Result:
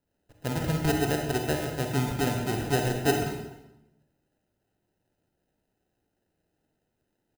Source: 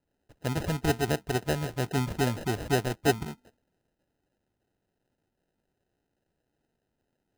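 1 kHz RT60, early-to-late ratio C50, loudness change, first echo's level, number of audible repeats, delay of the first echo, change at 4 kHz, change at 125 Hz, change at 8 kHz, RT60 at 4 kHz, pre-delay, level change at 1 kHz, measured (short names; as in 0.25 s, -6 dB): 0.90 s, 3.5 dB, +1.5 dB, -21.0 dB, 1, 0.254 s, +1.0 dB, +1.5 dB, +2.0 dB, 0.80 s, 36 ms, +1.5 dB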